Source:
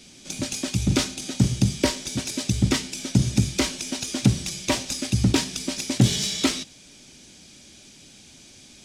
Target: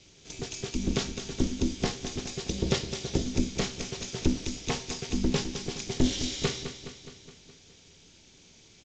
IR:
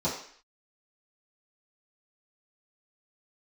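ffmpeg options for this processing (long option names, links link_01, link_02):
-filter_complex "[0:a]asettb=1/sr,asplit=3[link_01][link_02][link_03];[link_01]atrim=end=2.494[link_04];[link_02]atrim=start=2.49:end=3.22,asetpts=PTS-STARTPTS,afade=type=in:duration=0.004:curve=qsin,afade=type=out:start_time=0.726:duration=0.004:curve=qsin,equalizer=frequency=125:width_type=o:width=1:gain=-10,equalizer=frequency=250:width_type=o:width=1:gain=4,equalizer=frequency=500:width_type=o:width=1:gain=8,equalizer=frequency=4000:width_type=o:width=1:gain=4[link_05];[link_03]atrim=start=3.216[link_06];[link_04][link_05]acrossfade=duration=0.004:curve1=hsin:curve2=qsin[link_07];[link_07][link_06]acrossfade=duration=0.004:curve1=qsin:curve2=hsin,aeval=exprs='val(0)*sin(2*PI*130*n/s)':channel_layout=same,aecho=1:1:209|418|627|836|1045|1254|1463:0.299|0.173|0.1|0.0582|0.0338|0.0196|0.0114,asplit=2[link_08][link_09];[1:a]atrim=start_sample=2205,atrim=end_sample=3087[link_10];[link_09][link_10]afir=irnorm=-1:irlink=0,volume=-21.5dB[link_11];[link_08][link_11]amix=inputs=2:normalize=0,aresample=16000,aresample=44100,volume=-4.5dB"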